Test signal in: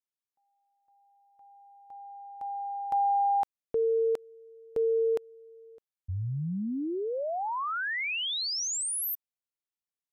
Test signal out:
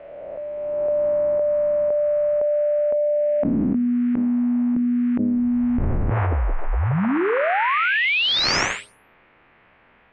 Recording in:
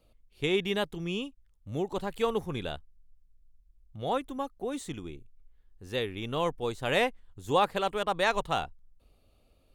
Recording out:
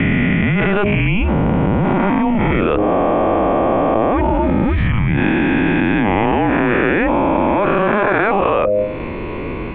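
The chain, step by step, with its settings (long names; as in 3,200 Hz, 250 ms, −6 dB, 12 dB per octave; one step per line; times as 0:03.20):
peak hold with a rise ahead of every peak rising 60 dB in 2.10 s
in parallel at −6 dB: sine wavefolder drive 4 dB, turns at −7 dBFS
on the sum: single-sideband voice off tune −210 Hz 200–2,600 Hz
hum removal 103 Hz, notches 6
envelope flattener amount 100%
level −2 dB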